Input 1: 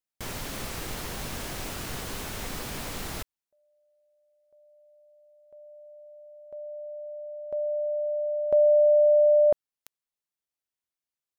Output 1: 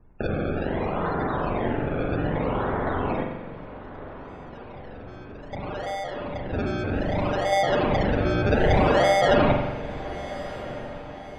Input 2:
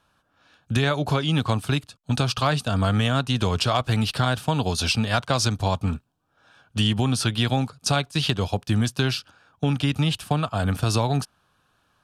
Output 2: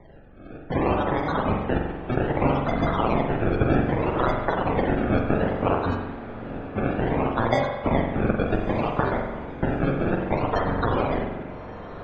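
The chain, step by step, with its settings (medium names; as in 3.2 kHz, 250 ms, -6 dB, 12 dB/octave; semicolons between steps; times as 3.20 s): bit-reversed sample order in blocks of 32 samples; steep high-pass 2.9 kHz 72 dB/octave; tilt EQ +3.5 dB/octave; band-stop 4 kHz, Q 5.1; compression 2.5:1, threshold -31 dBFS; added noise brown -57 dBFS; decimation with a swept rate 31×, swing 100% 0.63 Hz; loudest bins only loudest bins 64; distance through air 76 m; echo that smears into a reverb 1267 ms, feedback 46%, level -14.5 dB; spring tank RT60 1.1 s, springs 43 ms, chirp 65 ms, DRR 2 dB; trim +4 dB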